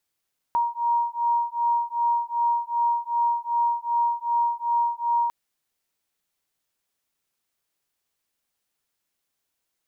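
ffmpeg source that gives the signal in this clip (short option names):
-f lavfi -i "aevalsrc='0.0631*(sin(2*PI*942*t)+sin(2*PI*944.6*t))':d=4.75:s=44100"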